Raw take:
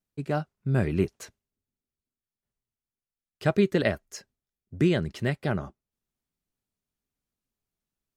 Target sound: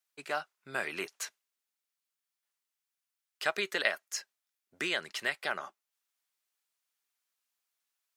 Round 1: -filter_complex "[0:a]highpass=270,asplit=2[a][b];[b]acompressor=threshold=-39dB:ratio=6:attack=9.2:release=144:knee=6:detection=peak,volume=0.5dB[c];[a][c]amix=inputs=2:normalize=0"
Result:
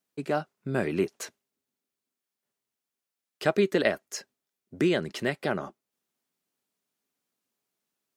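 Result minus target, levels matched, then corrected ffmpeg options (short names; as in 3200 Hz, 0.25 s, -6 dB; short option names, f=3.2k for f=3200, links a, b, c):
250 Hz band +11.5 dB
-filter_complex "[0:a]highpass=1.1k,asplit=2[a][b];[b]acompressor=threshold=-39dB:ratio=6:attack=9.2:release=144:knee=6:detection=peak,volume=0.5dB[c];[a][c]amix=inputs=2:normalize=0"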